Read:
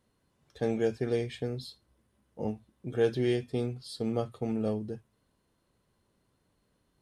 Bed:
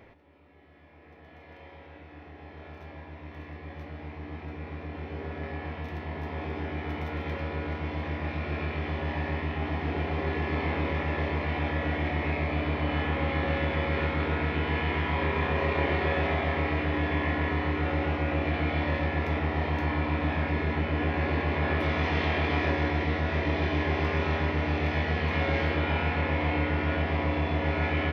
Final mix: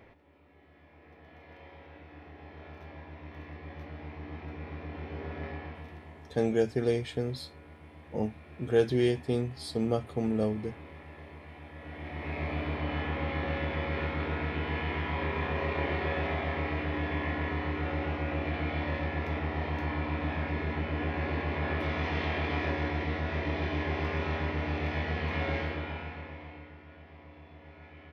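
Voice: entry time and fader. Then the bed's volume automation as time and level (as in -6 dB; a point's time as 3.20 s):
5.75 s, +2.0 dB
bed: 5.47 s -2.5 dB
6.44 s -18.5 dB
11.69 s -18.5 dB
12.45 s -4.5 dB
25.52 s -4.5 dB
26.83 s -24 dB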